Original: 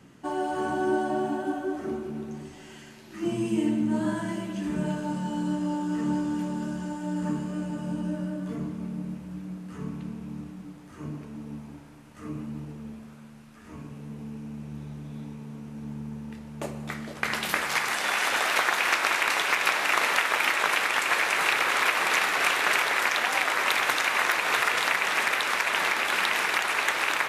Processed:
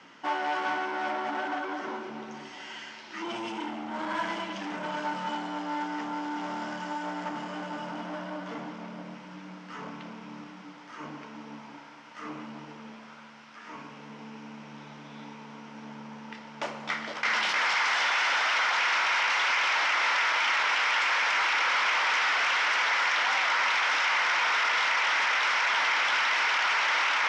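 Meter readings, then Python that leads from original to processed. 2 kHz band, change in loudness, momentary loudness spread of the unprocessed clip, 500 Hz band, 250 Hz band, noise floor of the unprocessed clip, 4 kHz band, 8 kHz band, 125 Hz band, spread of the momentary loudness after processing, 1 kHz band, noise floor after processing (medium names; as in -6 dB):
0.0 dB, -0.5 dB, 17 LU, -5.5 dB, -9.0 dB, -48 dBFS, +0.5 dB, -6.0 dB, -13.5 dB, 20 LU, +0.5 dB, -47 dBFS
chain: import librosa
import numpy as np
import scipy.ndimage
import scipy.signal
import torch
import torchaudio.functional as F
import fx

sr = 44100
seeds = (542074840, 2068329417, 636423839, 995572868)

p1 = fx.over_compress(x, sr, threshold_db=-30.0, ratio=-1.0)
p2 = x + F.gain(torch.from_numpy(p1), 2.5).numpy()
p3 = np.clip(10.0 ** (22.0 / 20.0) * p2, -1.0, 1.0) / 10.0 ** (22.0 / 20.0)
p4 = fx.cabinet(p3, sr, low_hz=370.0, low_slope=12, high_hz=5900.0, hz=(390.0, 940.0, 1400.0, 2100.0, 3100.0, 5400.0), db=(-6, 7, 6, 6, 6, 6))
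y = F.gain(torch.from_numpy(p4), -6.0).numpy()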